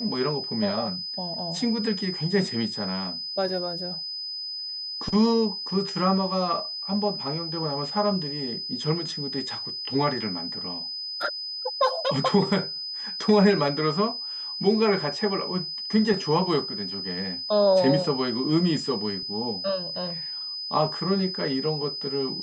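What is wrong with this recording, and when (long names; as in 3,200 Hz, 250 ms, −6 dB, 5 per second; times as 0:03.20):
whistle 5,000 Hz −31 dBFS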